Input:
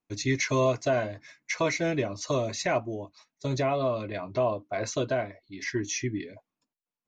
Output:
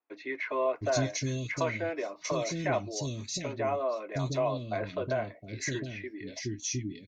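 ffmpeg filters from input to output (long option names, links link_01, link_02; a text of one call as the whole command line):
ffmpeg -i in.wav -filter_complex "[0:a]asplit=2[link_01][link_02];[link_02]acompressor=threshold=-36dB:ratio=6,volume=0dB[link_03];[link_01][link_03]amix=inputs=2:normalize=0,acrossover=split=350|2600[link_04][link_05][link_06];[link_04]adelay=710[link_07];[link_06]adelay=750[link_08];[link_07][link_05][link_08]amix=inputs=3:normalize=0,volume=-4dB" out.wav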